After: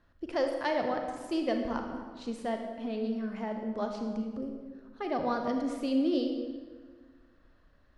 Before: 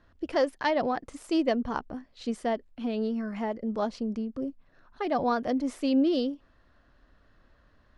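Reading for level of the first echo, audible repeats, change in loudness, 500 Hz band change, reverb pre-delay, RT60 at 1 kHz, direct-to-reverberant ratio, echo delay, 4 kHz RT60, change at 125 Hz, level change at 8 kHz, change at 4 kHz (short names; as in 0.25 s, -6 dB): none, none, -3.5 dB, -3.0 dB, 32 ms, 1.5 s, 3.5 dB, none, 1.1 s, -2.5 dB, n/a, -3.5 dB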